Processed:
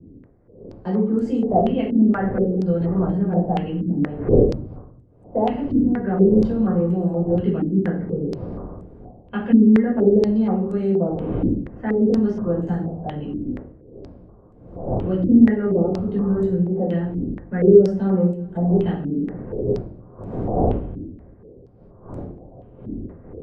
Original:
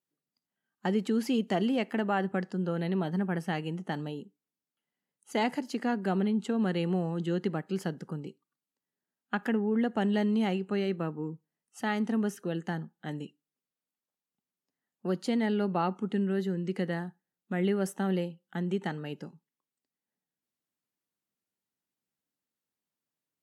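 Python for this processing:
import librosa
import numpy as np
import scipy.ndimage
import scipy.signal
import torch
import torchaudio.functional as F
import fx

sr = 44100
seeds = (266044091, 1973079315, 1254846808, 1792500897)

p1 = fx.dmg_wind(x, sr, seeds[0], corner_hz=450.0, level_db=-42.0)
p2 = fx.tilt_eq(p1, sr, slope=-4.5)
p3 = fx.rider(p2, sr, range_db=5, speed_s=2.0)
p4 = p2 + (p3 * librosa.db_to_amplitude(2.0))
p5 = fx.highpass(p4, sr, hz=140.0, slope=6)
p6 = fx.peak_eq(p5, sr, hz=480.0, db=5.0, octaves=1.5)
p7 = p6 + fx.echo_single(p6, sr, ms=391, db=-23.5, dry=0)
p8 = fx.room_shoebox(p7, sr, seeds[1], volume_m3=490.0, walls='furnished', distance_m=5.2)
p9 = fx.filter_held_lowpass(p8, sr, hz=4.2, low_hz=280.0, high_hz=8000.0)
y = p9 * librosa.db_to_amplitude(-17.5)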